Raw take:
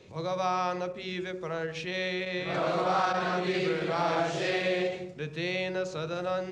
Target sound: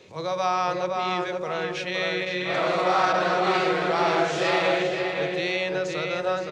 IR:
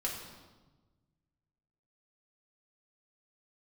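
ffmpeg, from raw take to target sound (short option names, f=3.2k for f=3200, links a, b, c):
-filter_complex "[0:a]lowshelf=f=240:g=-10,asplit=2[a][b];[b]adelay=517,lowpass=f=3k:p=1,volume=-3dB,asplit=2[c][d];[d]adelay=517,lowpass=f=3k:p=1,volume=0.34,asplit=2[e][f];[f]adelay=517,lowpass=f=3k:p=1,volume=0.34,asplit=2[g][h];[h]adelay=517,lowpass=f=3k:p=1,volume=0.34[i];[c][e][g][i]amix=inputs=4:normalize=0[j];[a][j]amix=inputs=2:normalize=0,volume=5.5dB"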